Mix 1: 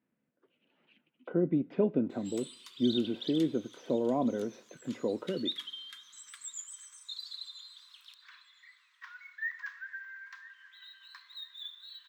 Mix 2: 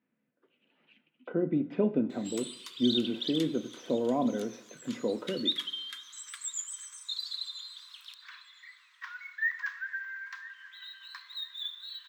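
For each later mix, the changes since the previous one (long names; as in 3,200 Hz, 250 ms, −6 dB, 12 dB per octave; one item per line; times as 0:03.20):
speech: send +11.5 dB
background +6.0 dB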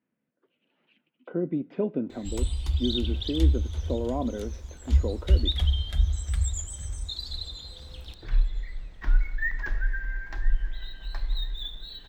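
speech: send −10.5 dB
background: remove Butterworth high-pass 990 Hz 96 dB per octave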